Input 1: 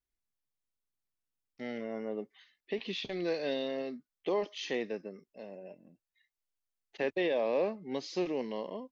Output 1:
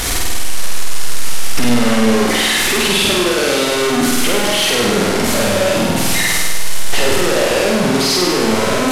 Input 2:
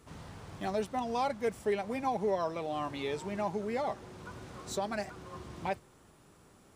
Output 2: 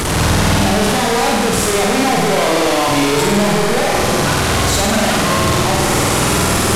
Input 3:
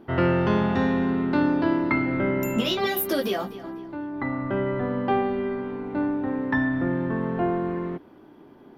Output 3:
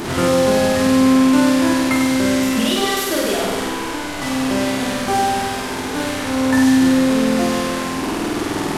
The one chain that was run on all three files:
linear delta modulator 64 kbit/s, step −22.5 dBFS
flutter between parallel walls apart 8.5 metres, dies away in 1.4 s
normalise the peak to −3 dBFS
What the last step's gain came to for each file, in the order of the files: +10.0, +10.0, +2.5 decibels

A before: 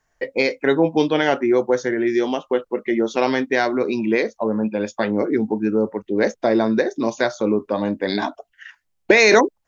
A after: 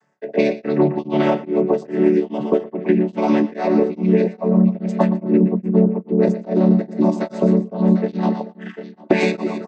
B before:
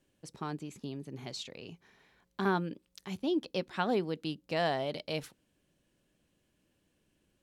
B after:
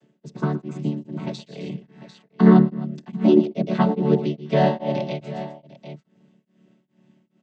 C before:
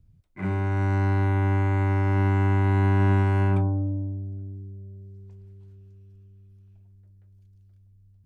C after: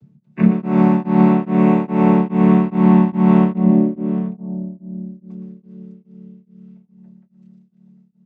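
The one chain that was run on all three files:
channel vocoder with a chord as carrier major triad, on D3
downward compressor, threshold −24 dBFS
dynamic equaliser 1,500 Hz, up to −6 dB, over −50 dBFS, Q 1.7
multi-tap delay 119/151/261/747 ms −10/−18.5/−16.5/−15 dB
tremolo along a rectified sine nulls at 2.4 Hz
normalise the peak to −2 dBFS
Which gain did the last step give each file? +12.5, +18.0, +16.5 decibels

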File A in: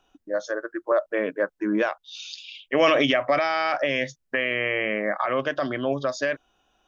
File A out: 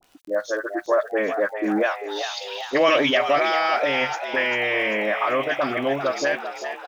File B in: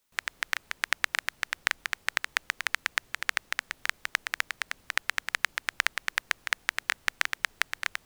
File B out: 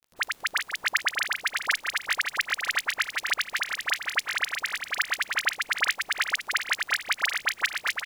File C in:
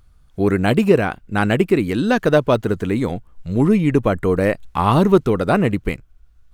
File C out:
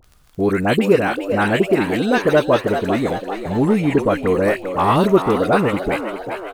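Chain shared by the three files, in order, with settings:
low-shelf EQ 150 Hz −10 dB
in parallel at −1 dB: downward compressor, threshold −29 dBFS
on the sum: bit-depth reduction 10 bits, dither none
all-pass dispersion highs, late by 45 ms, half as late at 1,400 Hz
surface crackle 17 per second −35 dBFS
on a send: echo with shifted repeats 394 ms, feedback 56%, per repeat +91 Hz, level −9 dB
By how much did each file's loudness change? +2.0, +3.5, 0.0 LU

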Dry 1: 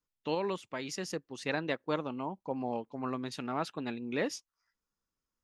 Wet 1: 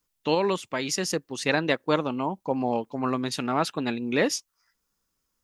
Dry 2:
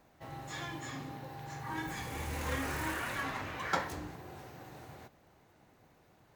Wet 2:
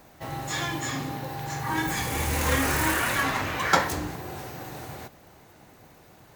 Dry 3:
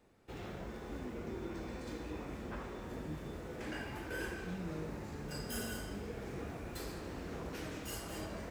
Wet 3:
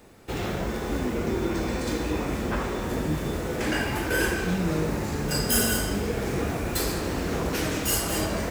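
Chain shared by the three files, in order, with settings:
high-shelf EQ 5,500 Hz +7 dB
loudness normalisation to −27 LKFS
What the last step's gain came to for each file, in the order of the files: +9.0, +11.0, +15.5 decibels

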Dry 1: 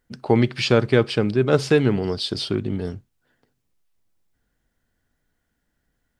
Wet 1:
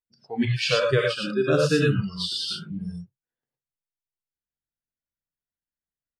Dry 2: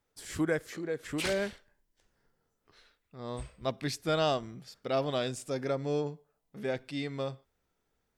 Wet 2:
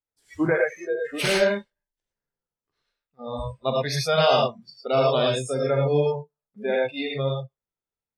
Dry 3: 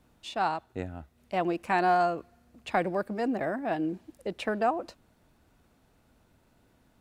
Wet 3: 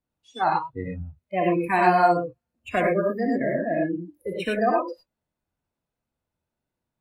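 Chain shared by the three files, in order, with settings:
reverb whose tail is shaped and stops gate 130 ms rising, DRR −1.5 dB
noise reduction from a noise print of the clip's start 27 dB
loudness normalisation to −24 LKFS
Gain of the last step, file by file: −3.0, +7.0, +3.5 decibels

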